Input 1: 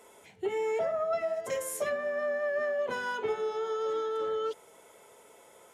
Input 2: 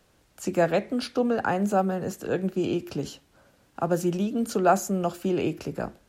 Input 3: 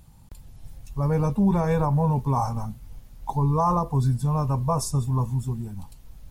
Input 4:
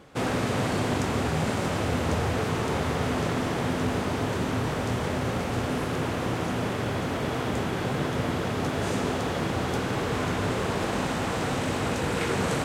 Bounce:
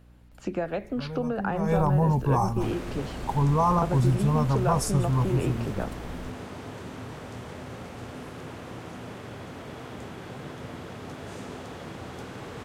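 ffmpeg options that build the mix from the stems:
-filter_complex "[1:a]lowpass=3300,acompressor=threshold=0.0562:ratio=6,volume=0.944[s0];[2:a]aeval=exprs='val(0)+0.0112*(sin(2*PI*60*n/s)+sin(2*PI*2*60*n/s)/2+sin(2*PI*3*60*n/s)/3+sin(2*PI*4*60*n/s)/4+sin(2*PI*5*60*n/s)/5)':c=same,volume=0.944,afade=t=in:st=1.54:d=0.24:silence=0.223872[s1];[3:a]adelay=2450,volume=0.266[s2];[s0][s1][s2]amix=inputs=3:normalize=0,asoftclip=type=hard:threshold=0.224"

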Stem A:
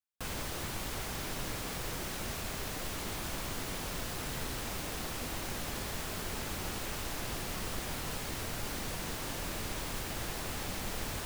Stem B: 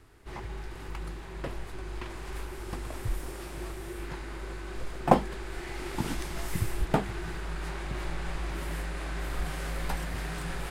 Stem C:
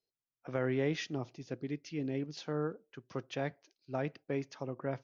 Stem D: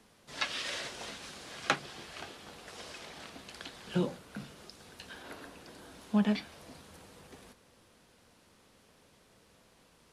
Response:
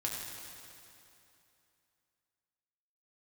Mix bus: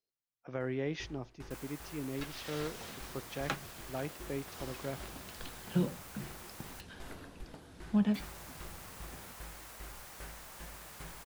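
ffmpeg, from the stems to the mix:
-filter_complex "[0:a]highpass=740,equalizer=f=3600:t=o:w=1.9:g=-6.5,adelay=1300,volume=0.422,asplit=3[s0][s1][s2];[s0]atrim=end=6.81,asetpts=PTS-STARTPTS,afade=t=out:st=6.806:d=0.004:c=hsin[s3];[s1]atrim=start=6.81:end=8.14,asetpts=PTS-STARTPTS,volume=0[s4];[s2]atrim=start=8.14,asetpts=PTS-STARTPTS,afade=t=in:d=0.004:c=hsin[s5];[s3][s4][s5]concat=n=3:v=0:a=1[s6];[1:a]acompressor=threshold=0.0158:ratio=6,aeval=exprs='val(0)*pow(10,-23*if(lt(mod(2.5*n/s,1),2*abs(2.5)/1000),1-mod(2.5*n/s,1)/(2*abs(2.5)/1000),(mod(2.5*n/s,1)-2*abs(2.5)/1000)/(1-2*abs(2.5)/1000))/20)':c=same,adelay=600,volume=0.562[s7];[2:a]volume=0.668[s8];[3:a]equalizer=f=94:w=0.57:g=11.5,dynaudnorm=f=490:g=3:m=4.22,adelay=1800,volume=0.15[s9];[s6][s7][s8][s9]amix=inputs=4:normalize=0"

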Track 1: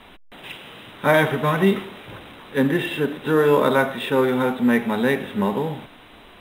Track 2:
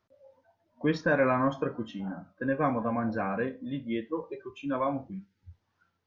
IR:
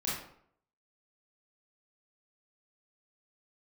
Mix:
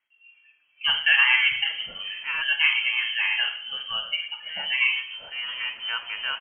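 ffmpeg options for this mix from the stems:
-filter_complex "[0:a]adelay=1200,volume=0.531,afade=t=out:st=1.87:d=0.49:silence=0.375837[s0];[1:a]volume=0.75,asplit=3[s1][s2][s3];[s2]volume=0.422[s4];[s3]apad=whole_len=339672[s5];[s0][s5]sidechaincompress=threshold=0.00501:ratio=10:attack=16:release=500[s6];[2:a]atrim=start_sample=2205[s7];[s4][s7]afir=irnorm=-1:irlink=0[s8];[s6][s1][s8]amix=inputs=3:normalize=0,equalizer=f=190:w=0.73:g=-11.5,dynaudnorm=f=120:g=5:m=2.66,lowpass=f=2800:t=q:w=0.5098,lowpass=f=2800:t=q:w=0.6013,lowpass=f=2800:t=q:w=0.9,lowpass=f=2800:t=q:w=2.563,afreqshift=-3300"

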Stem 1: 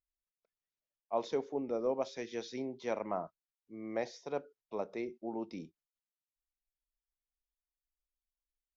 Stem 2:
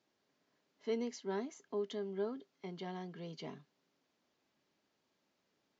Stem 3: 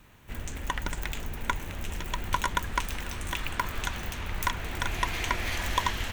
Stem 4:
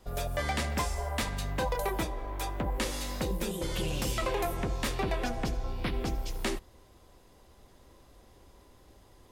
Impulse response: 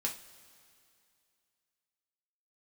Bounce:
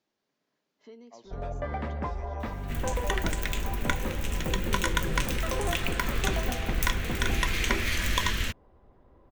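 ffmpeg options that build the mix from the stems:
-filter_complex "[0:a]acrossover=split=300|3000[s0][s1][s2];[s1]acompressor=threshold=0.0141:ratio=6[s3];[s0][s3][s2]amix=inputs=3:normalize=0,volume=0.251[s4];[1:a]acompressor=threshold=0.00282:ratio=2.5,volume=0.708,asplit=2[s5][s6];[s6]volume=0.15[s7];[2:a]equalizer=f=820:t=o:w=0.69:g=-13.5,adelay=2400,volume=1.06,asplit=2[s8][s9];[s9]volume=0.447[s10];[3:a]lowpass=1300,adelay=1250,volume=0.944[s11];[4:a]atrim=start_sample=2205[s12];[s7][s10]amix=inputs=2:normalize=0[s13];[s13][s12]afir=irnorm=-1:irlink=0[s14];[s4][s5][s8][s11][s14]amix=inputs=5:normalize=0"

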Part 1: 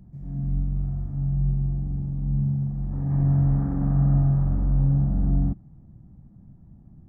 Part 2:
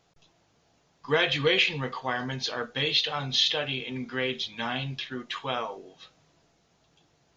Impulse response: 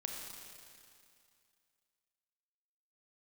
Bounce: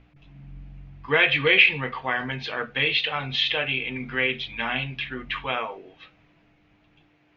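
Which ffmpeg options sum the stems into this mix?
-filter_complex "[0:a]volume=0.141[s0];[1:a]aeval=exprs='val(0)+0.00282*(sin(2*PI*60*n/s)+sin(2*PI*2*60*n/s)/2+sin(2*PI*3*60*n/s)/3+sin(2*PI*4*60*n/s)/4+sin(2*PI*5*60*n/s)/5)':c=same,volume=1.12,asplit=2[s1][s2];[s2]apad=whole_len=312566[s3];[s0][s3]sidechaincompress=threshold=0.00794:ratio=3:attack=16:release=241[s4];[s4][s1]amix=inputs=2:normalize=0,lowpass=f=2400:t=q:w=3,bandreject=f=60:t=h:w=6,bandreject=f=120:t=h:w=6,bandreject=f=180:t=h:w=6,bandreject=f=240:t=h:w=6"

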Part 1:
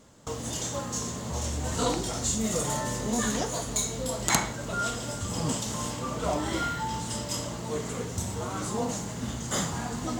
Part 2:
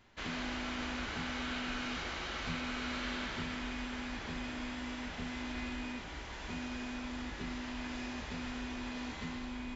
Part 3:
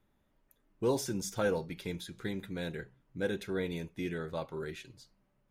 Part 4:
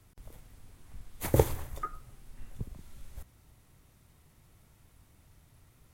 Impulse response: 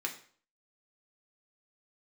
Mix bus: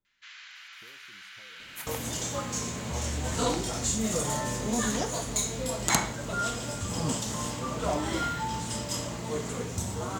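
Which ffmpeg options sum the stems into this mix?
-filter_complex "[0:a]adelay=1600,volume=0.944[s0];[1:a]highpass=f=1500:w=0.5412,highpass=f=1500:w=1.3066,adelay=50,volume=0.631[s1];[2:a]acompressor=threshold=0.00708:ratio=6,volume=0.158[s2];[3:a]highpass=1300,adelay=550,volume=0.841[s3];[s0][s1][s2][s3]amix=inputs=4:normalize=0"

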